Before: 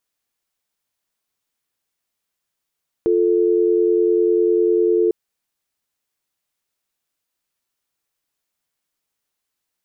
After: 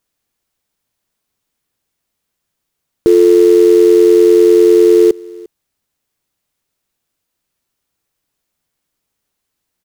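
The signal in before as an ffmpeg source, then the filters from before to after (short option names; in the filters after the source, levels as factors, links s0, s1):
-f lavfi -i "aevalsrc='0.158*(sin(2*PI*350*t)+sin(2*PI*440*t))':d=2.05:s=44100"
-filter_complex "[0:a]lowshelf=f=430:g=8,asplit=2[s0][s1];[s1]acrusher=bits=3:mode=log:mix=0:aa=0.000001,volume=0.708[s2];[s0][s2]amix=inputs=2:normalize=0,aecho=1:1:350:0.0668"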